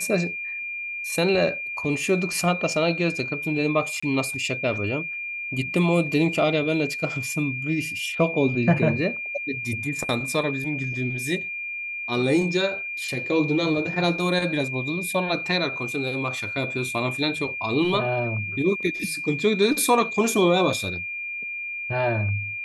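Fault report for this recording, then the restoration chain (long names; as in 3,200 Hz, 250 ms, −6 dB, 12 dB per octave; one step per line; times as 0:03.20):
whistle 2,400 Hz −29 dBFS
0:04.00–0:04.03: drop-out 25 ms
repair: notch filter 2,400 Hz, Q 30
repair the gap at 0:04.00, 25 ms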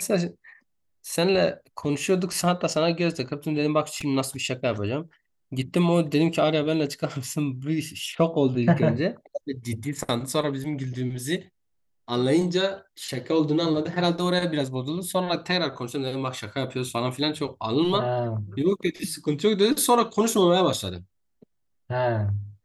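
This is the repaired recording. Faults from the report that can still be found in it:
none of them is left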